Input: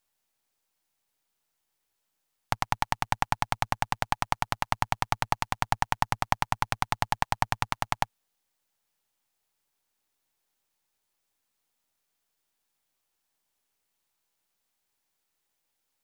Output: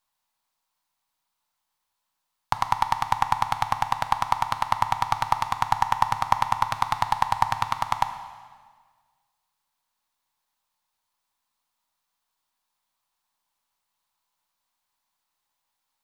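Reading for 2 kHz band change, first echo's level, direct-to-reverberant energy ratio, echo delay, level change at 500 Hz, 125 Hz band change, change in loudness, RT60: 0.0 dB, no echo, 9.0 dB, no echo, -0.5 dB, -1.5 dB, +4.5 dB, 1.6 s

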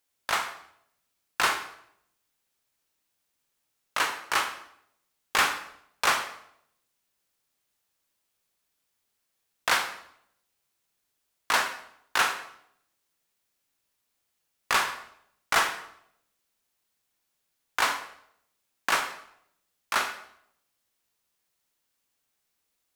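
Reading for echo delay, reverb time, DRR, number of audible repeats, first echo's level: no echo, 0.70 s, 7.0 dB, no echo, no echo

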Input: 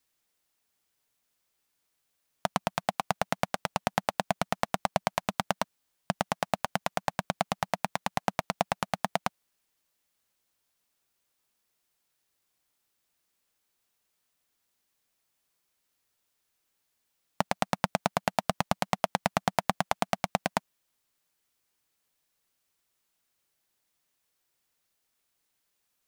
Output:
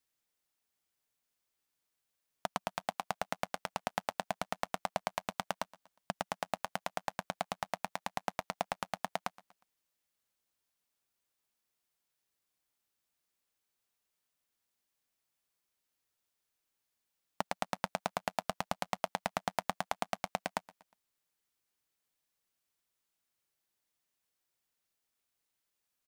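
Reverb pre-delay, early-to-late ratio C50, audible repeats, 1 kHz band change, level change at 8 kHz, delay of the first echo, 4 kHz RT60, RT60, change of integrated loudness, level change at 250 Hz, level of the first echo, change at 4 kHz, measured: no reverb, no reverb, 2, -7.0 dB, -7.0 dB, 120 ms, no reverb, no reverb, -7.5 dB, -10.5 dB, -21.0 dB, -7.0 dB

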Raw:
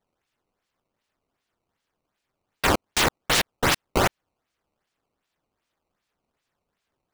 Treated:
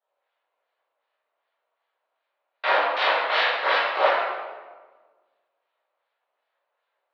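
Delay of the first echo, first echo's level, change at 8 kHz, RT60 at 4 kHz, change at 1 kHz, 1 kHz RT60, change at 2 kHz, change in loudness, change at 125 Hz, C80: no echo, no echo, under -25 dB, 0.90 s, +4.5 dB, 1.3 s, +3.5 dB, +1.0 dB, under -40 dB, 1.0 dB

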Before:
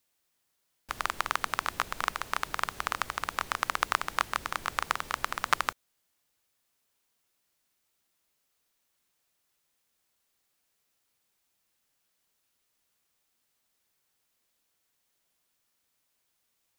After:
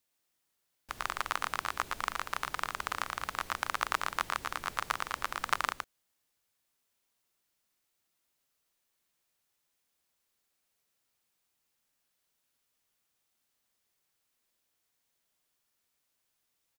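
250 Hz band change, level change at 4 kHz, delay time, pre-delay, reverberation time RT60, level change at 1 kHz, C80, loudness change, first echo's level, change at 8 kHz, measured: -3.0 dB, -3.0 dB, 114 ms, no reverb, no reverb, -3.0 dB, no reverb, -3.0 dB, -4.0 dB, -3.0 dB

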